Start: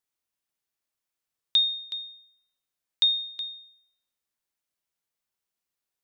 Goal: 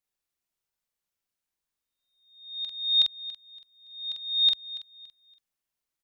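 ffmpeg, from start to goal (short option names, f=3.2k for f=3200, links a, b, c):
-filter_complex "[0:a]areverse,lowshelf=f=69:g=8,asplit=2[a][b];[b]adelay=45,volume=-3dB[c];[a][c]amix=inputs=2:normalize=0,aecho=1:1:283|566|849:0.15|0.0434|0.0126,volume=-3dB"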